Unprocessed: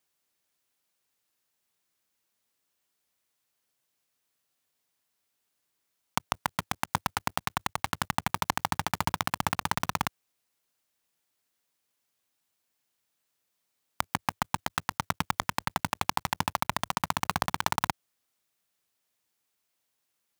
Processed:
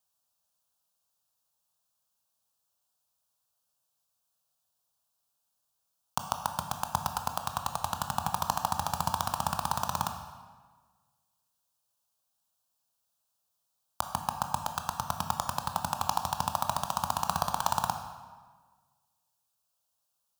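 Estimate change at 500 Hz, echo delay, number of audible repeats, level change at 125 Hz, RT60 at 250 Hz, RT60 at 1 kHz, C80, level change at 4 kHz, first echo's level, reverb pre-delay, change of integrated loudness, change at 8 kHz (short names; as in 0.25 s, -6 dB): -0.5 dB, none, none, -2.0 dB, 1.6 s, 1.4 s, 9.0 dB, -3.5 dB, none, 17 ms, -1.0 dB, 0.0 dB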